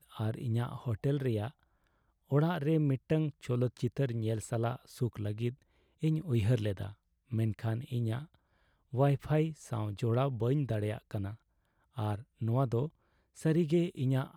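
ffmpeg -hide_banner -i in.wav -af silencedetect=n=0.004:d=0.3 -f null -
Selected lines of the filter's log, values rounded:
silence_start: 1.51
silence_end: 2.31 | silence_duration: 0.80
silence_start: 5.54
silence_end: 6.02 | silence_duration: 0.48
silence_start: 6.93
silence_end: 7.31 | silence_duration: 0.38
silence_start: 8.34
silence_end: 8.93 | silence_duration: 0.58
silence_start: 11.35
silence_end: 11.97 | silence_duration: 0.62
silence_start: 12.89
silence_end: 13.37 | silence_duration: 0.48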